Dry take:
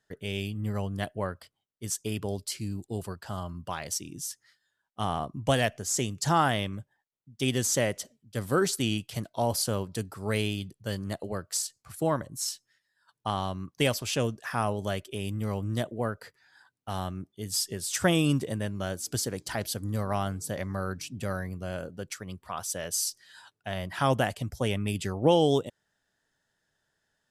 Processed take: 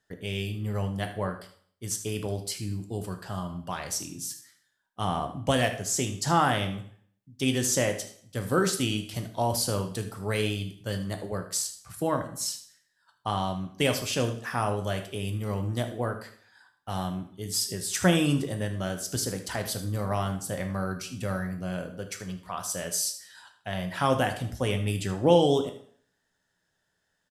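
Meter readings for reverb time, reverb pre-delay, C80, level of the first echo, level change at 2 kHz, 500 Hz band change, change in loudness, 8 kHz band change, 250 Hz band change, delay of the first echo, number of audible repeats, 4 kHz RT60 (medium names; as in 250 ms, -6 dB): 0.55 s, 4 ms, 14.0 dB, -14.0 dB, +1.0 dB, +1.0 dB, +1.0 dB, +1.0 dB, +1.5 dB, 77 ms, 1, 0.50 s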